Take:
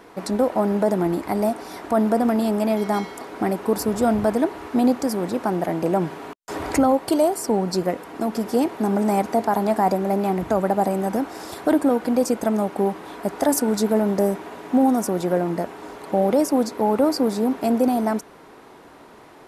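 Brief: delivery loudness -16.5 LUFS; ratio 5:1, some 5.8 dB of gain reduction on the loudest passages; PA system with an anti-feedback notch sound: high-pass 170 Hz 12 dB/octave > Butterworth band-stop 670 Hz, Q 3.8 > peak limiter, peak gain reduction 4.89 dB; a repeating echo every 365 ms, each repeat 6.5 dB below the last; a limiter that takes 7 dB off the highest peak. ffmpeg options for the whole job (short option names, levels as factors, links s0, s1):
-af "acompressor=threshold=0.1:ratio=5,alimiter=limit=0.133:level=0:latency=1,highpass=170,asuperstop=centerf=670:order=8:qfactor=3.8,aecho=1:1:365|730|1095|1460|1825|2190:0.473|0.222|0.105|0.0491|0.0231|0.0109,volume=4.47,alimiter=limit=0.447:level=0:latency=1"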